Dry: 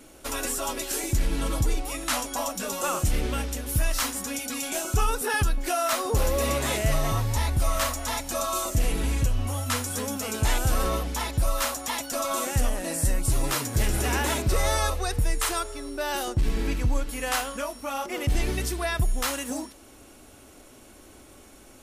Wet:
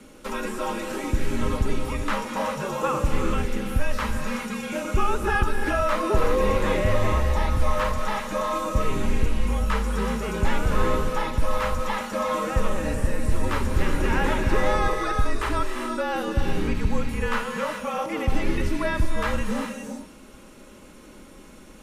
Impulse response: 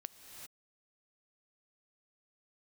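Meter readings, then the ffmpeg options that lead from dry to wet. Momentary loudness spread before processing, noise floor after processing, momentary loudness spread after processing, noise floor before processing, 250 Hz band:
5 LU, -47 dBFS, 6 LU, -50 dBFS, +5.0 dB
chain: -filter_complex "[0:a]aemphasis=mode=reproduction:type=cd[s0];[1:a]atrim=start_sample=2205[s1];[s0][s1]afir=irnorm=-1:irlink=0,acrossover=split=2800[s2][s3];[s3]acompressor=threshold=0.00282:ratio=4:attack=1:release=60[s4];[s2][s4]amix=inputs=2:normalize=0,asuperstop=centerf=750:order=4:qfactor=6.2,afreqshift=-42,volume=2.66"

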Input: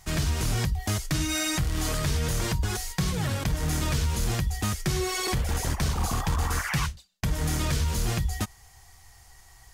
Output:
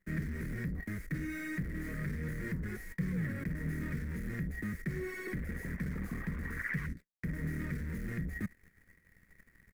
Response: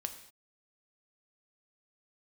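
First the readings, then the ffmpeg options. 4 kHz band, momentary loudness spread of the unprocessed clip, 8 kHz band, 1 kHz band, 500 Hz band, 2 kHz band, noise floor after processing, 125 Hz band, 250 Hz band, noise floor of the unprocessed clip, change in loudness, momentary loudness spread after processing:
-29.0 dB, 3 LU, -26.5 dB, -20.5 dB, -11.5 dB, -6.5 dB, -68 dBFS, -10.5 dB, -5.0 dB, -54 dBFS, -10.5 dB, 3 LU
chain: -filter_complex "[0:a]acrossover=split=110|3800[s0][s1][s2];[s1]adynamicsmooth=sensitivity=7:basefreq=2000[s3];[s0][s3][s2]amix=inputs=3:normalize=0,highshelf=f=6400:g=10,asoftclip=type=hard:threshold=0.0422,areverse,acompressor=threshold=0.0112:ratio=6,areverse,aeval=exprs='0.0335*(cos(1*acos(clip(val(0)/0.0335,-1,1)))-cos(1*PI/2))+0.000841*(cos(5*acos(clip(val(0)/0.0335,-1,1)))-cos(5*PI/2))+0.00531*(cos(7*acos(clip(val(0)/0.0335,-1,1)))-cos(7*PI/2))+0.00106*(cos(8*acos(clip(val(0)/0.0335,-1,1)))-cos(8*PI/2))':c=same,firequalizer=gain_entry='entry(120,0);entry(170,12);entry(330,5);entry(530,0);entry(770,-16);entry(1900,12);entry(2800,-13);entry(6500,-20);entry(14000,-14)':delay=0.05:min_phase=1"

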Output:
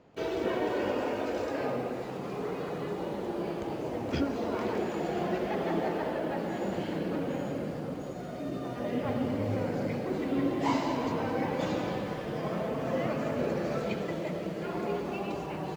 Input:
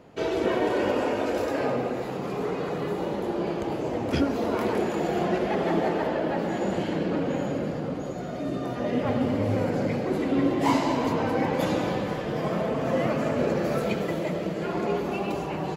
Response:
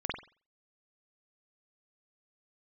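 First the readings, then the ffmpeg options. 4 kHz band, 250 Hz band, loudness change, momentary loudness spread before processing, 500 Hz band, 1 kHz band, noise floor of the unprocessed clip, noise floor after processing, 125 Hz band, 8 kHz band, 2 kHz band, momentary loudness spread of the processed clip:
-5.5 dB, -5.5 dB, -5.5 dB, 5 LU, -5.5 dB, -5.5 dB, -32 dBFS, -38 dBFS, -5.5 dB, -6.5 dB, -5.5 dB, 5 LU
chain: -filter_complex "[0:a]lowpass=f=7400:w=0.5412,lowpass=f=7400:w=1.3066,asplit=2[s0][s1];[s1]acrusher=bits=6:mix=0:aa=0.000001,volume=0.316[s2];[s0][s2]amix=inputs=2:normalize=0,volume=0.398"

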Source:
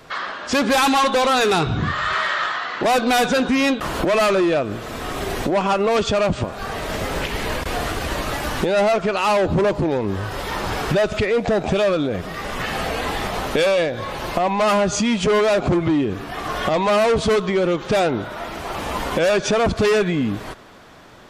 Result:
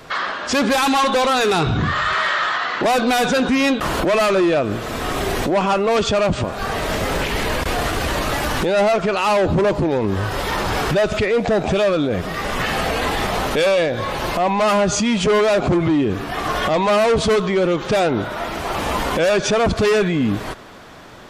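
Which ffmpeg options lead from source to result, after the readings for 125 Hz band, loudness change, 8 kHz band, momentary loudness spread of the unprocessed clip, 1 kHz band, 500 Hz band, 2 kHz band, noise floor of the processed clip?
+2.5 dB, +1.5 dB, +2.0 dB, 10 LU, +1.5 dB, +1.5 dB, +2.0 dB, -28 dBFS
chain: -af "alimiter=limit=0.15:level=0:latency=1:release=12,volume=1.68"

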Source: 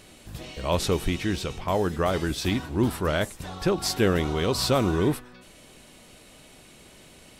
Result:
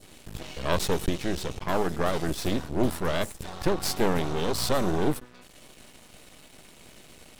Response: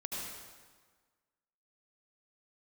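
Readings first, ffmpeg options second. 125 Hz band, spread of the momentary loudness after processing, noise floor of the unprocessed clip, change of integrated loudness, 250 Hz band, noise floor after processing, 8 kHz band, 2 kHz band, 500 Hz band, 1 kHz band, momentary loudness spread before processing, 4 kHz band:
-4.5 dB, 8 LU, -51 dBFS, -2.5 dB, -3.0 dB, -53 dBFS, -1.0 dB, -2.5 dB, -2.5 dB, -1.0 dB, 9 LU, -3.0 dB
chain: -af "adynamicequalizer=threshold=0.00708:dfrequency=2000:dqfactor=0.72:tfrequency=2000:tqfactor=0.72:attack=5:release=100:ratio=0.375:range=3:mode=cutabove:tftype=bell,aeval=exprs='max(val(0),0)':c=same,volume=1.5"

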